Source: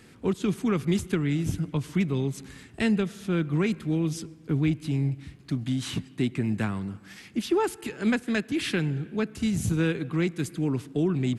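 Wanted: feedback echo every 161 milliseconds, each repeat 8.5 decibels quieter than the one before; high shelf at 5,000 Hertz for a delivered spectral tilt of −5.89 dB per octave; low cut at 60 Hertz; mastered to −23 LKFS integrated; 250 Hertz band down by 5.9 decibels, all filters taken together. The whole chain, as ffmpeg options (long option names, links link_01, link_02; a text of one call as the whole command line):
ffmpeg -i in.wav -af "highpass=60,equalizer=frequency=250:width_type=o:gain=-8.5,highshelf=frequency=5000:gain=-7,aecho=1:1:161|322|483|644:0.376|0.143|0.0543|0.0206,volume=8.5dB" out.wav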